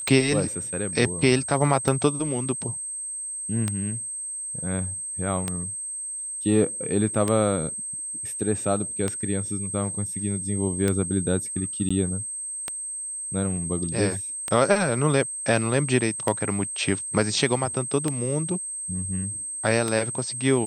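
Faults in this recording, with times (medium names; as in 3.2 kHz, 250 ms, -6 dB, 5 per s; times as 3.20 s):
tick 33 1/3 rpm
whine 8.3 kHz -30 dBFS
11.89–11.90 s: dropout 15 ms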